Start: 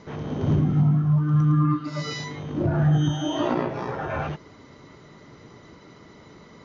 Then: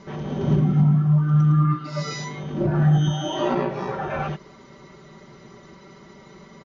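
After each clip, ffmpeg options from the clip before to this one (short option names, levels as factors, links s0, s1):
-af "aecho=1:1:5.2:0.71"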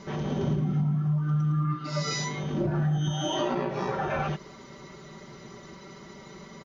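-af "acompressor=threshold=0.0562:ratio=4,highshelf=f=4800:g=7"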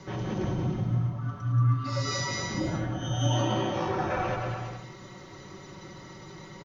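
-filter_complex "[0:a]afreqshift=-31,asplit=2[s0][s1];[s1]aecho=0:1:180|315|416.2|492.2|549.1:0.631|0.398|0.251|0.158|0.1[s2];[s0][s2]amix=inputs=2:normalize=0,volume=0.841"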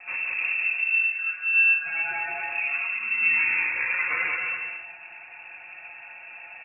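-af "flanger=delay=9.9:depth=7.9:regen=-52:speed=0.43:shape=sinusoidal,lowpass=f=2400:t=q:w=0.5098,lowpass=f=2400:t=q:w=0.6013,lowpass=f=2400:t=q:w=0.9,lowpass=f=2400:t=q:w=2.563,afreqshift=-2800,volume=2.11"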